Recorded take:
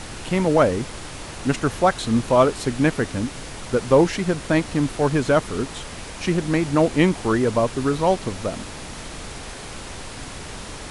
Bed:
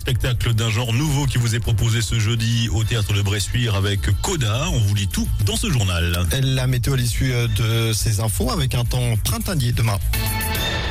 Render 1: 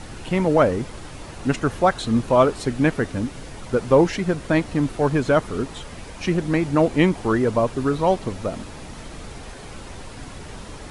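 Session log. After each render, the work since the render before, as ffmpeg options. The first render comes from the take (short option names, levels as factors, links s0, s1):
-af "afftdn=nr=7:nf=-36"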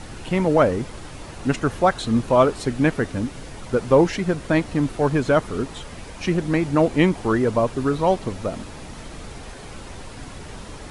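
-af anull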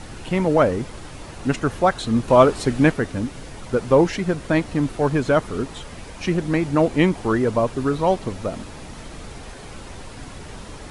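-filter_complex "[0:a]asplit=3[s0][s1][s2];[s0]atrim=end=2.282[s3];[s1]atrim=start=2.278:end=2.922,asetpts=PTS-STARTPTS,volume=1.41[s4];[s2]atrim=start=2.918[s5];[s3][s4]acrossfade=d=0.004:c1=hsin:c2=hsin[s6];[s6][s5]acrossfade=d=0.004:c1=hsin:c2=hsin"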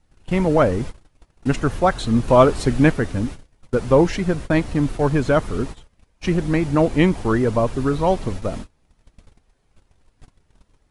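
-af "agate=range=0.0282:threshold=0.0282:ratio=16:detection=peak,lowshelf=f=89:g=10.5"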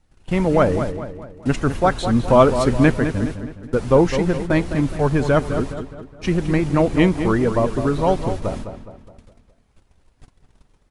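-filter_complex "[0:a]asplit=2[s0][s1];[s1]adelay=208,lowpass=f=3100:p=1,volume=0.355,asplit=2[s2][s3];[s3]adelay=208,lowpass=f=3100:p=1,volume=0.46,asplit=2[s4][s5];[s5]adelay=208,lowpass=f=3100:p=1,volume=0.46,asplit=2[s6][s7];[s7]adelay=208,lowpass=f=3100:p=1,volume=0.46,asplit=2[s8][s9];[s9]adelay=208,lowpass=f=3100:p=1,volume=0.46[s10];[s0][s2][s4][s6][s8][s10]amix=inputs=6:normalize=0"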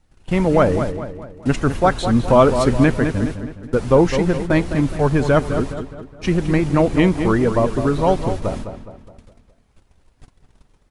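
-af "volume=1.19,alimiter=limit=0.708:level=0:latency=1"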